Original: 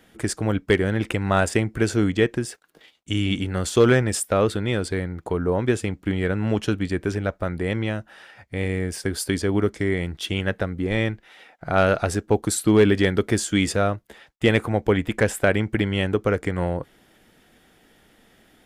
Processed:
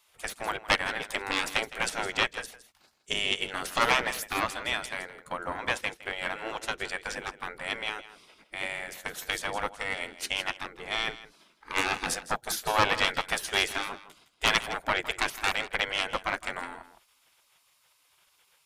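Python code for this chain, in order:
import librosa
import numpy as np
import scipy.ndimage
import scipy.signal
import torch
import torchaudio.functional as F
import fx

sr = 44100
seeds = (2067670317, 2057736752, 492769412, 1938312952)

p1 = fx.cheby_harmonics(x, sr, harmonics=(5,), levels_db=(-11,), full_scale_db=-4.0)
p2 = fx.spec_gate(p1, sr, threshold_db=-15, keep='weak')
p3 = p2 + fx.echo_single(p2, sr, ms=162, db=-11.0, dry=0)
y = fx.upward_expand(p3, sr, threshold_db=-38.0, expansion=1.5)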